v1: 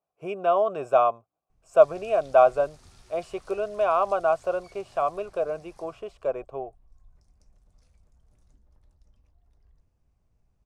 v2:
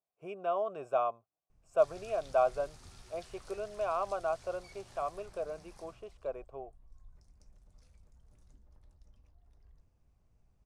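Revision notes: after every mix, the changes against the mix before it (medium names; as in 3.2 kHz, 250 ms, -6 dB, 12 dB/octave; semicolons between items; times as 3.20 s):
speech -10.5 dB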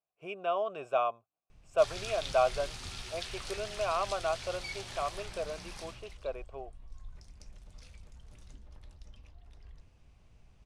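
background +9.0 dB; master: add peaking EQ 3 kHz +10.5 dB 1.5 oct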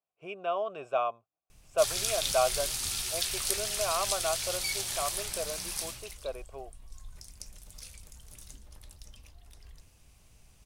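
background: remove tape spacing loss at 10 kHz 22 dB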